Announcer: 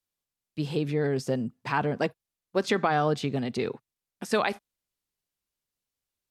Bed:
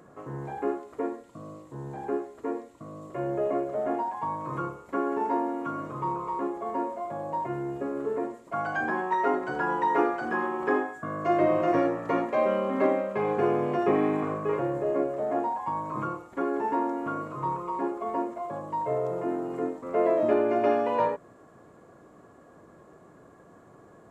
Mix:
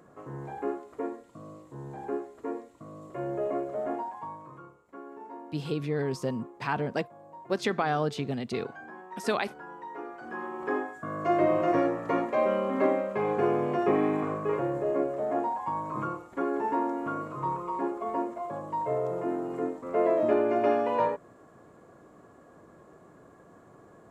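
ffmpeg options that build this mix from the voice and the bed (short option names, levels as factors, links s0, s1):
-filter_complex "[0:a]adelay=4950,volume=0.708[s0];[1:a]volume=4.22,afade=t=out:st=3.84:d=0.75:silence=0.211349,afade=t=in:st=10.02:d=1.2:silence=0.16788[s1];[s0][s1]amix=inputs=2:normalize=0"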